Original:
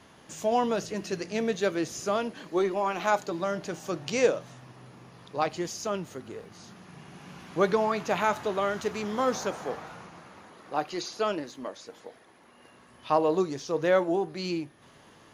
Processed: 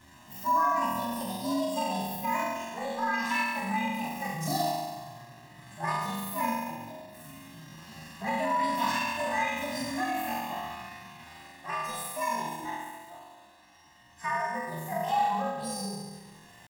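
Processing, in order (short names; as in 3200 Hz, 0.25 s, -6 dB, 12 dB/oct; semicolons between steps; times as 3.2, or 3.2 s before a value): inharmonic rescaling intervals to 119%; random-step tremolo; speed mistake 48 kHz file played as 44.1 kHz; compressor 12:1, threshold -31 dBFS, peak gain reduction 12.5 dB; comb 1.5 ms, depth 90%; flutter echo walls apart 6 m, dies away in 1.4 s; pitch shift +5.5 st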